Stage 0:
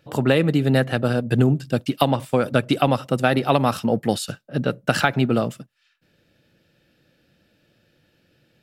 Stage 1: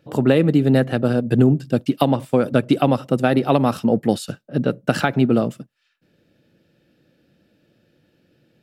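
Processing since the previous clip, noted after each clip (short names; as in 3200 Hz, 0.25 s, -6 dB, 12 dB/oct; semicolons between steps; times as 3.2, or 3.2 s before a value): bell 280 Hz +8 dB 2.5 oct; gain -3.5 dB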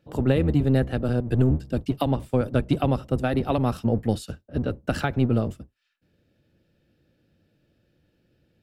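octaver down 1 oct, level 0 dB; gain -7.5 dB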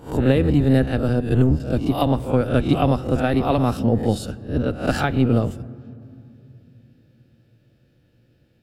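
spectral swells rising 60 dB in 0.37 s; on a send at -17.5 dB: reverb RT60 2.8 s, pre-delay 3 ms; on the sum: gain +3 dB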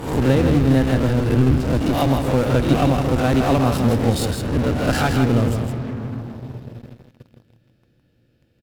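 in parallel at -10 dB: fuzz box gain 42 dB, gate -49 dBFS; on the sum: echo 0.162 s -6 dB; gain -2.5 dB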